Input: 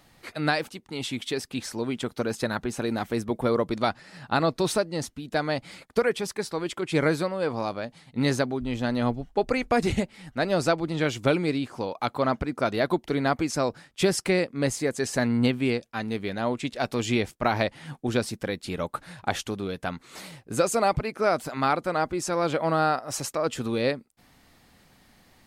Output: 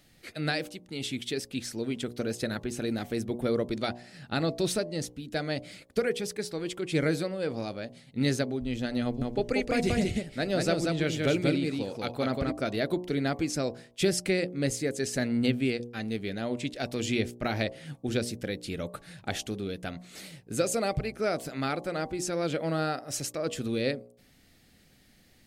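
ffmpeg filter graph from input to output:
ffmpeg -i in.wav -filter_complex "[0:a]asettb=1/sr,asplit=3[link_01][link_02][link_03];[link_01]atrim=end=9.034[link_04];[link_02]atrim=start=9.03:end=12.52,asetpts=PTS-STARTPTS,afade=type=in:duration=0.004:curve=qsin,afade=type=out:start_time=3.486:duration=0.004:curve=qsin,acompressor=mode=upward:threshold=-37dB:ratio=2.5:attack=3.2:release=140:knee=2.83:detection=peak,aecho=1:1:185:0.708,atrim=end_sample=153909[link_05];[link_03]atrim=start=12.516[link_06];[link_04][link_05]acrossfade=duration=0.004:curve1=hsin:curve2=qsin[link_07];[link_07][link_06]acrossfade=duration=0.004:curve1=qsin:curve2=hsin,equalizer=frequency=1000:width=1.7:gain=-14,bandreject=frequency=59.95:width_type=h:width=4,bandreject=frequency=119.9:width_type=h:width=4,bandreject=frequency=179.85:width_type=h:width=4,bandreject=frequency=239.8:width_type=h:width=4,bandreject=frequency=299.75:width_type=h:width=4,bandreject=frequency=359.7:width_type=h:width=4,bandreject=frequency=419.65:width_type=h:width=4,bandreject=frequency=479.6:width_type=h:width=4,bandreject=frequency=539.55:width_type=h:width=4,bandreject=frequency=599.5:width_type=h:width=4,bandreject=frequency=659.45:width_type=h:width=4,bandreject=frequency=719.4:width_type=h:width=4,bandreject=frequency=779.35:width_type=h:width=4,bandreject=frequency=839.3:width_type=h:width=4,bandreject=frequency=899.25:width_type=h:width=4,bandreject=frequency=959.2:width_type=h:width=4,bandreject=frequency=1019.15:width_type=h:width=4,bandreject=frequency=1079.1:width_type=h:width=4,bandreject=frequency=1139.05:width_type=h:width=4,volume=-1.5dB" out.wav

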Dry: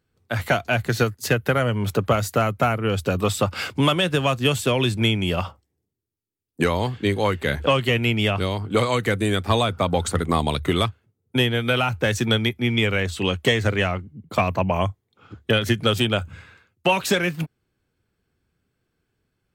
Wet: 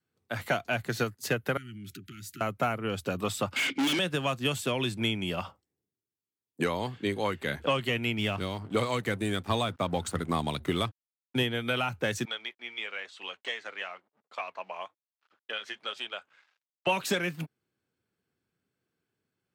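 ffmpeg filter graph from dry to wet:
ffmpeg -i in.wav -filter_complex "[0:a]asettb=1/sr,asplit=3[link_01][link_02][link_03];[link_01]atrim=end=1.574[link_04];[link_02]atrim=start=1.57:end=2.41,asetpts=PTS-STARTPTS,afade=type=in:duration=0.004:curve=qsin,afade=type=out:start_time=0.836:duration=0.004:curve=qsin,equalizer=frequency=1400:width=1.6:gain=-8,acompressor=threshold=-28dB:ratio=10:attack=3.2:release=140:knee=1:detection=peak,asuperstop=centerf=700:order=20:qfactor=0.76[link_05];[link_03]atrim=start=2.406[link_06];[link_04][link_05]acrossfade=duration=0.004:curve1=hsin:curve2=qsin[link_07];[link_07][link_06]acrossfade=duration=0.004:curve1=qsin:curve2=hsin,asettb=1/sr,asplit=3[link_08][link_09][link_10];[link_08]atrim=end=3.564[link_11];[link_09]atrim=start=3.56:end=3.99,asetpts=PTS-STARTPTS,afade=type=in:duration=0.004:curve=qsin,afade=type=out:start_time=0.426:duration=0.004:curve=qsin,asplit=3[link_12][link_13][link_14];[link_12]bandpass=frequency=270:width_type=q:width=8,volume=0dB[link_15];[link_13]bandpass=frequency=2290:width_type=q:width=8,volume=-6dB[link_16];[link_14]bandpass=frequency=3010:width_type=q:width=8,volume=-9dB[link_17];[link_15][link_16][link_17]amix=inputs=3:normalize=0,highshelf=frequency=4600:gain=-6,asplit=2[link_18][link_19];[link_19]highpass=frequency=720:poles=1,volume=39dB,asoftclip=type=tanh:threshold=-12.5dB[link_20];[link_18][link_20]amix=inputs=2:normalize=0,lowpass=frequency=7700:poles=1,volume=-6dB[link_21];[link_10]atrim=start=3.986[link_22];[link_11][link_21]acrossfade=duration=0.004:curve1=hsin:curve2=qsin[link_23];[link_23][link_22]acrossfade=duration=0.004:curve1=qsin:curve2=hsin,asettb=1/sr,asplit=3[link_24][link_25][link_26];[link_24]atrim=end=8.184[link_27];[link_25]atrim=start=8.18:end=11.43,asetpts=PTS-STARTPTS,afade=type=in:duration=0.004:curve=qsin,afade=type=out:start_time=3.246:duration=0.004:curve=qsin,aeval=exprs='sgn(val(0))*max(abs(val(0))-0.00891,0)':channel_layout=same,lowshelf=frequency=130:gain=7[link_28];[link_26]atrim=start=11.426[link_29];[link_27][link_28]acrossfade=duration=0.004:curve1=hsin:curve2=qsin[link_30];[link_30][link_29]acrossfade=duration=0.004:curve1=qsin:curve2=hsin,asettb=1/sr,asplit=3[link_31][link_32][link_33];[link_31]atrim=end=12.254[link_34];[link_32]atrim=start=12.25:end=16.87,asetpts=PTS-STARTPTS,afade=type=in:duration=0.004:curve=qsin,afade=type=out:start_time=4.616:duration=0.004:curve=qsin,flanger=delay=0.7:depth=5.9:regen=-69:speed=1:shape=triangular,aeval=exprs='sgn(val(0))*max(abs(val(0))-0.00237,0)':channel_layout=same,highpass=790,lowpass=5100[link_35];[link_33]atrim=start=16.866[link_36];[link_34][link_35]acrossfade=duration=0.004:curve1=hsin:curve2=qsin[link_37];[link_37][link_36]acrossfade=duration=0.004:curve1=qsin:curve2=hsin,highpass=140,adynamicequalizer=threshold=0.02:dfrequency=460:dqfactor=2.5:tfrequency=460:tqfactor=2.5:attack=5:release=100:ratio=0.375:range=2:mode=cutabove:tftype=bell,volume=-7.5dB" out.wav

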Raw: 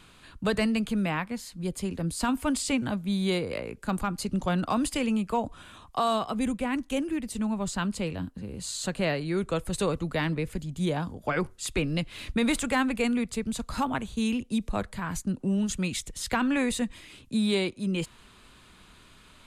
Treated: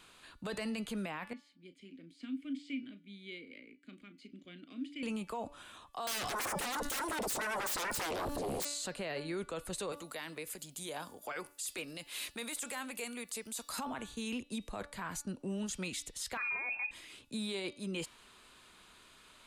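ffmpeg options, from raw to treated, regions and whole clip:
ffmpeg -i in.wav -filter_complex "[0:a]asettb=1/sr,asplit=3[link_01][link_02][link_03];[link_01]atrim=end=1.334[link_04];[link_02]atrim=start=1.33:end=5.03,asetpts=PTS-STARTPTS,afade=type=in:duration=0.004:curve=qsin,afade=type=out:start_time=3.696:duration=0.004:curve=qsin,asplit=2[link_05][link_06];[link_06]adelay=35,volume=-12dB[link_07];[link_05][link_07]amix=inputs=2:normalize=0,atrim=end_sample=163170,acrossover=split=6000[link_08][link_09];[link_09]acompressor=threshold=-43dB:ratio=4:attack=1:release=60[link_10];[link_08][link_10]amix=inputs=2:normalize=0,asplit=3[link_11][link_12][link_13];[link_11]bandpass=frequency=270:width_type=q:width=8,volume=0dB[link_14];[link_12]bandpass=frequency=2290:width_type=q:width=8,volume=-6dB[link_15];[link_13]bandpass=frequency=3010:width_type=q:width=8,volume=-9dB[link_16];[link_14][link_15][link_16]amix=inputs=3:normalize=0[link_17];[link_03]atrim=start=5.026[link_18];[link_04][link_17]acrossfade=duration=0.004:curve1=hsin:curve2=qsin[link_19];[link_19][link_18]acrossfade=duration=0.004:curve1=qsin:curve2=hsin,asettb=1/sr,asplit=3[link_20][link_21][link_22];[link_20]atrim=end=6.074[link_23];[link_21]atrim=start=6.07:end=8.65,asetpts=PTS-STARTPTS,afade=type=in:duration=0.004:curve=qsin,afade=type=out:start_time=2.576:duration=0.004:curve=qsin,bass=frequency=250:gain=14,treble=frequency=4000:gain=12,aeval=exprs='0.299*sin(PI/2*10*val(0)/0.299)':channel_layout=same[link_24];[link_22]atrim=start=8.646[link_25];[link_23][link_24]acrossfade=duration=0.004:curve1=hsin:curve2=qsin[link_26];[link_26][link_25]acrossfade=duration=0.004:curve1=qsin:curve2=hsin,asettb=1/sr,asplit=3[link_27][link_28][link_29];[link_27]atrim=end=9.924[link_30];[link_28]atrim=start=9.92:end=13.79,asetpts=PTS-STARTPTS,afade=type=in:duration=0.004:curve=qsin,afade=type=out:start_time=3.866:duration=0.004:curve=qsin,acompressor=threshold=-31dB:ratio=2.5:attack=3.2:release=140:knee=1:detection=peak,aemphasis=mode=production:type=bsi[link_31];[link_29]atrim=start=13.786[link_32];[link_30][link_31]acrossfade=duration=0.004:curve1=hsin:curve2=qsin[link_33];[link_33][link_32]acrossfade=duration=0.004:curve1=qsin:curve2=hsin,asettb=1/sr,asplit=3[link_34][link_35][link_36];[link_34]atrim=end=16.374[link_37];[link_35]atrim=start=16.37:end=16.91,asetpts=PTS-STARTPTS,afade=type=in:duration=0.004:curve=qsin,afade=type=out:start_time=0.536:duration=0.004:curve=qsin,bandreject=frequency=50:width_type=h:width=6,bandreject=frequency=100:width_type=h:width=6,bandreject=frequency=150:width_type=h:width=6,bandreject=frequency=200:width_type=h:width=6,bandreject=frequency=250:width_type=h:width=6,bandreject=frequency=300:width_type=h:width=6,lowpass=frequency=2300:width_type=q:width=0.5098,lowpass=frequency=2300:width_type=q:width=0.6013,lowpass=frequency=2300:width_type=q:width=0.9,lowpass=frequency=2300:width_type=q:width=2.563,afreqshift=-2700[link_38];[link_36]atrim=start=16.906[link_39];[link_37][link_38]acrossfade=duration=0.004:curve1=hsin:curve2=qsin[link_40];[link_40][link_39]acrossfade=duration=0.004:curve1=qsin:curve2=hsin,bass=frequency=250:gain=-11,treble=frequency=4000:gain=2,bandreject=frequency=289.3:width_type=h:width=4,bandreject=frequency=578.6:width_type=h:width=4,bandreject=frequency=867.9:width_type=h:width=4,bandreject=frequency=1157.2:width_type=h:width=4,bandreject=frequency=1446.5:width_type=h:width=4,bandreject=frequency=1735.8:width_type=h:width=4,bandreject=frequency=2025.1:width_type=h:width=4,bandreject=frequency=2314.4:width_type=h:width=4,bandreject=frequency=2603.7:width_type=h:width=4,bandreject=frequency=2893:width_type=h:width=4,bandreject=frequency=3182.3:width_type=h:width=4,bandreject=frequency=3471.6:width_type=h:width=4,bandreject=frequency=3760.9:width_type=h:width=4,bandreject=frequency=4050.2:width_type=h:width=4,bandreject=frequency=4339.5:width_type=h:width=4,bandreject=frequency=4628.8:width_type=h:width=4,bandreject=frequency=4918.1:width_type=h:width=4,bandreject=frequency=5207.4:width_type=h:width=4,bandreject=frequency=5496.7:width_type=h:width=4,bandreject=frequency=5786:width_type=h:width=4,alimiter=level_in=2.5dB:limit=-24dB:level=0:latency=1:release=14,volume=-2.5dB,volume=-4dB" out.wav

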